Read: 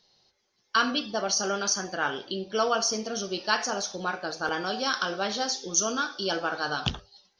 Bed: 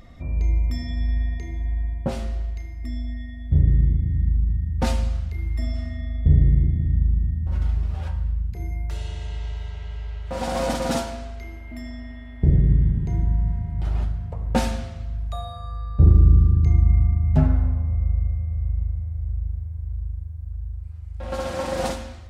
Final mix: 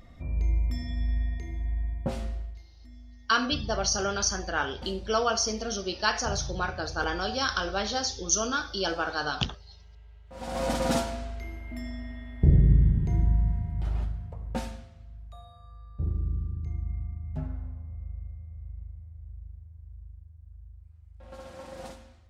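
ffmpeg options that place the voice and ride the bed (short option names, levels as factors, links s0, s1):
-filter_complex "[0:a]adelay=2550,volume=0.944[s0];[1:a]volume=4.22,afade=t=out:st=2.25:d=0.41:silence=0.188365,afade=t=in:st=10.3:d=0.52:silence=0.133352,afade=t=out:st=13.27:d=1.6:silence=0.188365[s1];[s0][s1]amix=inputs=2:normalize=0"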